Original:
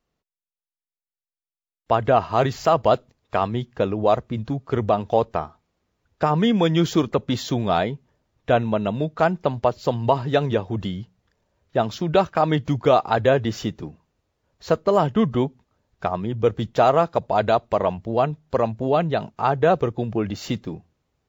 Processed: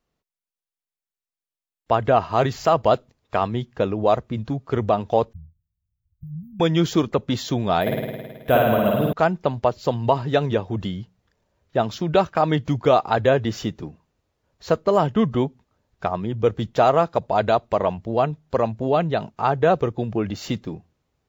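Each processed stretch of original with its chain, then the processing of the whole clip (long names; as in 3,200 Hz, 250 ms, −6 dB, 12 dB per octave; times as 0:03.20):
0:05.33–0:06.60: inverse Chebyshev band-stop filter 660–5,000 Hz, stop band 80 dB + phaser with its sweep stopped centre 1,900 Hz, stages 6
0:07.81–0:09.13: bad sample-rate conversion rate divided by 3×, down none, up hold + flutter between parallel walls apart 9.2 metres, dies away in 1.5 s
whole clip: no processing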